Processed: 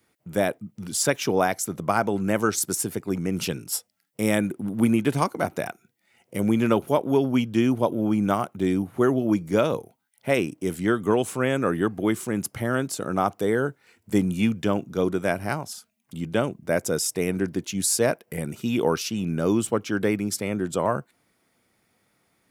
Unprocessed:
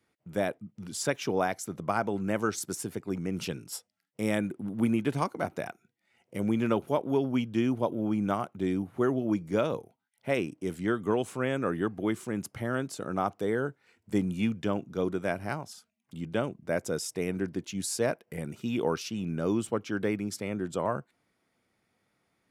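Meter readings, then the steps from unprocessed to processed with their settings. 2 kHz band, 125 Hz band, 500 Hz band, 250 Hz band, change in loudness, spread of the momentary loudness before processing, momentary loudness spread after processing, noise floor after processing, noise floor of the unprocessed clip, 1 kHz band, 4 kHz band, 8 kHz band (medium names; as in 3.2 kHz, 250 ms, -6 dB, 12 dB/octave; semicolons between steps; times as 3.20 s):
+6.5 dB, +6.0 dB, +6.0 dB, +6.0 dB, +6.5 dB, 8 LU, 7 LU, -70 dBFS, -77 dBFS, +6.0 dB, +7.5 dB, +10.5 dB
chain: treble shelf 8.9 kHz +10.5 dB; trim +6 dB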